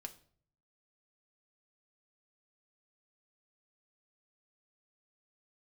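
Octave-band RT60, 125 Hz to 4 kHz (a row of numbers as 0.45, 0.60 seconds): 0.95, 0.70, 0.60, 0.45, 0.40, 0.40 seconds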